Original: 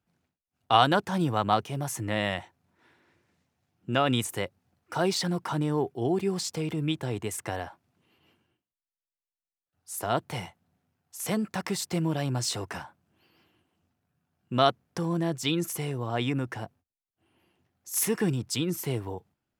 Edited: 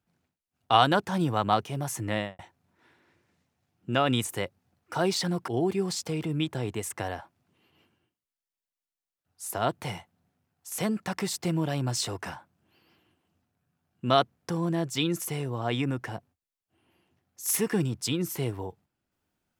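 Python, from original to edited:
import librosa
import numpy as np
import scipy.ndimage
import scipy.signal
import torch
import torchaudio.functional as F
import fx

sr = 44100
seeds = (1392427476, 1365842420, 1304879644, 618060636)

y = fx.studio_fade_out(x, sr, start_s=2.14, length_s=0.25)
y = fx.edit(y, sr, fx.cut(start_s=5.48, length_s=0.48), tone=tone)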